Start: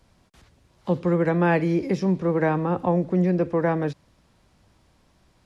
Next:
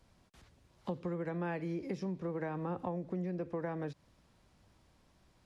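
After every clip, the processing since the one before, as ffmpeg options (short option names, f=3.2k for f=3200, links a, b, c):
-af "acompressor=threshold=-28dB:ratio=6,volume=-6.5dB"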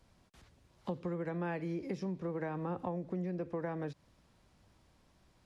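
-af anull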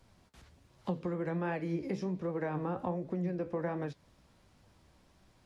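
-af "flanger=delay=7.1:depth=9.2:regen=65:speed=1.3:shape=triangular,volume=7dB"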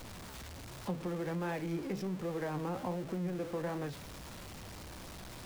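-af "aeval=exprs='val(0)+0.5*0.0126*sgn(val(0))':c=same,volume=-4dB"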